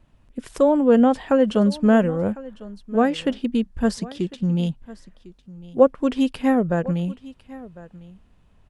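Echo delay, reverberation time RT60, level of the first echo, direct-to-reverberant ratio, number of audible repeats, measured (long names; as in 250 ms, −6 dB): 1,052 ms, no reverb audible, −19.5 dB, no reverb audible, 1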